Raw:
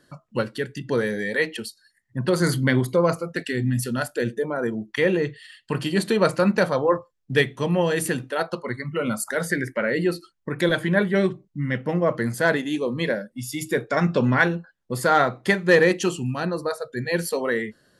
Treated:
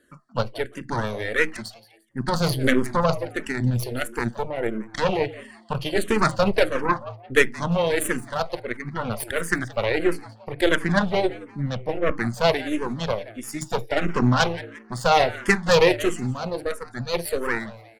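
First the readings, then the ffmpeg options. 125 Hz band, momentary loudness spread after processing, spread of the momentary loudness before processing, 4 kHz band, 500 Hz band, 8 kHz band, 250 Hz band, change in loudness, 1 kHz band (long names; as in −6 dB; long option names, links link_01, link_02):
−1.0 dB, 11 LU, 9 LU, +2.5 dB, −1.0 dB, −0.5 dB, −2.0 dB, −0.5 dB, +2.0 dB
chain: -filter_complex "[0:a]aeval=exprs='0.562*(cos(1*acos(clip(val(0)/0.562,-1,1)))-cos(1*PI/2))+0.1*(cos(6*acos(clip(val(0)/0.562,-1,1)))-cos(6*PI/2))+0.0251*(cos(7*acos(clip(val(0)/0.562,-1,1)))-cos(7*PI/2))':channel_layout=same,asplit=4[link_01][link_02][link_03][link_04];[link_02]adelay=174,afreqshift=110,volume=-18dB[link_05];[link_03]adelay=348,afreqshift=220,volume=-27.6dB[link_06];[link_04]adelay=522,afreqshift=330,volume=-37.3dB[link_07];[link_01][link_05][link_06][link_07]amix=inputs=4:normalize=0,asplit=2[link_08][link_09];[link_09]afreqshift=-1.5[link_10];[link_08][link_10]amix=inputs=2:normalize=1,volume=3dB"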